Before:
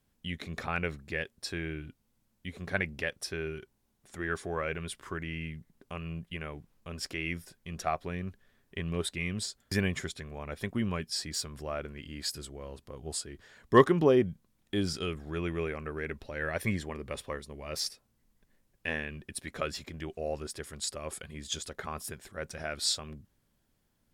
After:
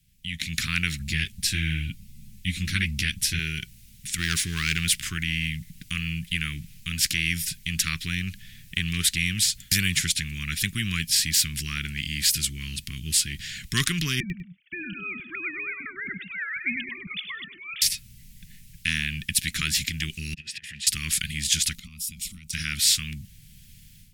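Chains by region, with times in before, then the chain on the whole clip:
0.99–3.39 s: bass shelf 320 Hz +12 dB + three-phase chorus
4.18–4.96 s: waveshaping leveller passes 1 + peaking EQ 13 kHz -4 dB 0.24 oct
14.20–17.82 s: formants replaced by sine waves + feedback delay 100 ms, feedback 21%, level -13 dB
20.34–20.87 s: jump at every zero crossing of -49.5 dBFS + vowel filter e + compressor with a negative ratio -56 dBFS, ratio -0.5
21.75–22.53 s: compression 20:1, threshold -50 dBFS + static phaser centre 440 Hz, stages 6
whole clip: elliptic band-stop 170–2300 Hz, stop band 80 dB; level rider gain up to 16 dB; spectrum-flattening compressor 2:1; trim +1 dB

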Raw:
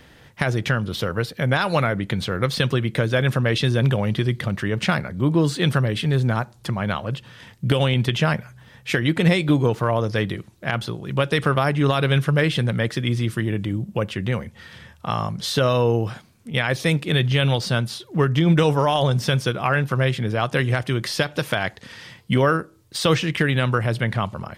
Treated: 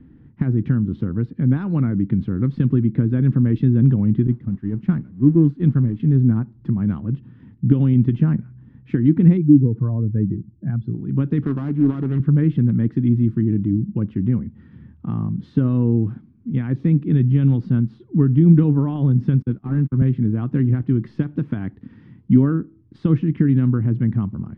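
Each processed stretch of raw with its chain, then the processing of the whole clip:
4.27–6.00 s: jump at every zero crossing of -25 dBFS + expander -15 dBFS
9.37–10.94 s: spectral contrast enhancement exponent 1.8 + peaking EQ 10 kHz -8 dB 3 oct
11.45–12.20 s: dead-time distortion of 0.21 ms + high-pass 230 Hz 6 dB/octave + loudspeaker Doppler distortion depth 0.43 ms
19.42–20.02 s: one-bit delta coder 32 kbps, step -33.5 dBFS + gate -26 dBFS, range -31 dB + three bands expanded up and down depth 100%
whole clip: low-pass 1.3 kHz 12 dB/octave; resonant low shelf 400 Hz +13.5 dB, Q 3; trim -11 dB

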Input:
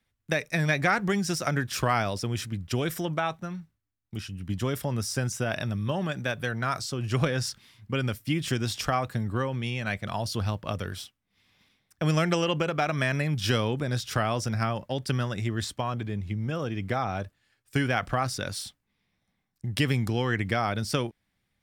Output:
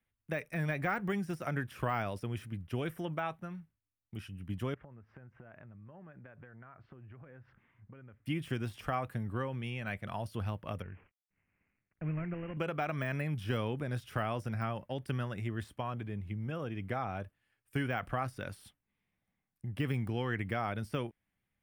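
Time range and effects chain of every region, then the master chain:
4.74–8.26 s: low-pass 2 kHz 24 dB/octave + compression 16:1, threshold -41 dBFS
10.82–12.57 s: CVSD coder 16 kbps + steep low-pass 2.5 kHz 48 dB/octave + peaking EQ 830 Hz -11.5 dB 2.7 oct
whole clip: de-esser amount 90%; high-order bell 5.3 kHz -10 dB 1.3 oct; trim -7.5 dB

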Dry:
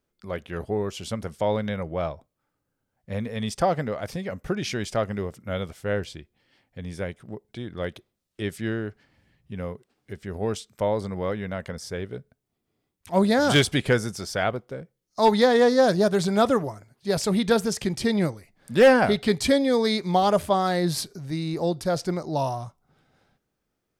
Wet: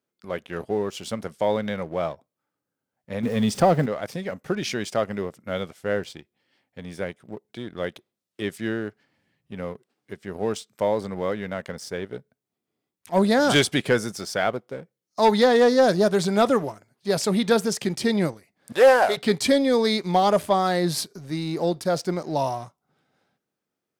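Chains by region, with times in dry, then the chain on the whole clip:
3.23–3.86 s: jump at every zero crossing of -38 dBFS + bass shelf 410 Hz +9 dB + upward compressor, threshold -28 dBFS
18.72–19.17 s: CVSD coder 64 kbps + resonant low shelf 370 Hz -13.5 dB, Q 1.5
whole clip: high-pass 160 Hz 12 dB/octave; waveshaping leveller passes 1; trim -2 dB

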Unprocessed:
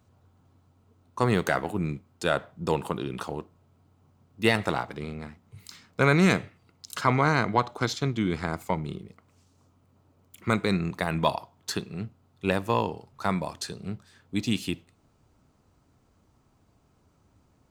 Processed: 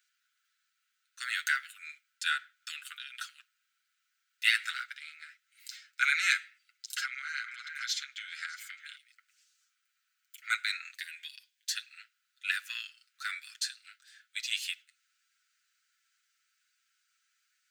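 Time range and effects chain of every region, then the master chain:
6.90–8.96 s: repeats whose band climbs or falls 204 ms, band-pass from 820 Hz, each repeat 1.4 oct, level -9.5 dB + compression 12:1, threshold -25 dBFS
10.94–11.75 s: peaking EQ 1.1 kHz +7.5 dB 1.2 oct + compression 3:1, threshold -25 dBFS + static phaser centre 540 Hz, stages 4
whole clip: steep high-pass 1.4 kHz 96 dB/octave; peaking EQ 11 kHz -4.5 dB 0.32 oct; comb 7.5 ms

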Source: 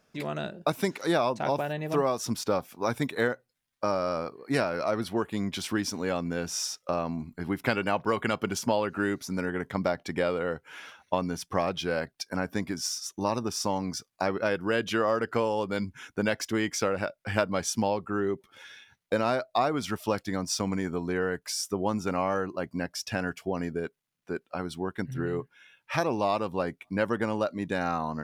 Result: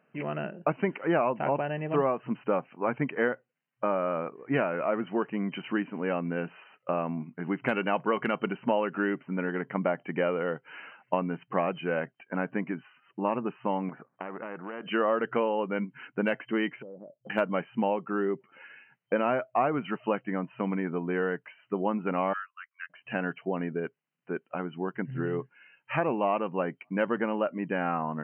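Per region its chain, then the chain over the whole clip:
13.89–14.86 s: low-pass 1.3 kHz 24 dB/octave + compression 5:1, threshold -30 dBFS + spectrum-flattening compressor 2:1
16.82–17.30 s: inverse Chebyshev low-pass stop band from 1.6 kHz, stop band 50 dB + compression, threshold -41 dBFS
22.33–22.90 s: steep high-pass 1.2 kHz 72 dB/octave + upward expansion, over -57 dBFS
whole clip: FFT band-pass 120–3100 Hz; de-esser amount 95%

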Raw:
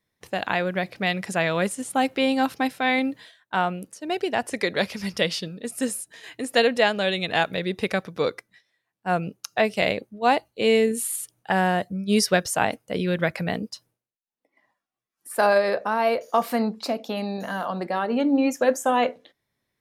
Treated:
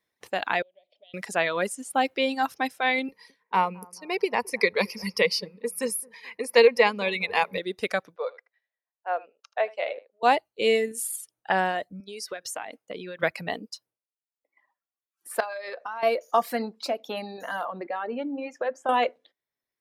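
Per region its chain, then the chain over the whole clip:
0.62–1.14 s: compression, threshold -35 dBFS + two resonant band-passes 1.4 kHz, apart 2.4 oct
3.08–7.58 s: rippled EQ curve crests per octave 0.86, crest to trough 14 dB + bucket-brigade echo 216 ms, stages 2048, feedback 47%, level -14.5 dB
8.16–10.23 s: Chebyshev high-pass 530 Hz, order 3 + tape spacing loss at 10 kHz 35 dB + delay 79 ms -10.5 dB
12.00–13.23 s: high-pass 140 Hz + treble shelf 11 kHz -4 dB + compression 16:1, threshold -28 dBFS
15.40–16.03 s: frequency weighting A + compression 8:1, threshold -28 dBFS
17.65–18.89 s: low-pass 2.8 kHz + compression 2.5:1, threshold -25 dBFS
whole clip: reverb removal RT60 1.6 s; tone controls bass -12 dB, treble -2 dB

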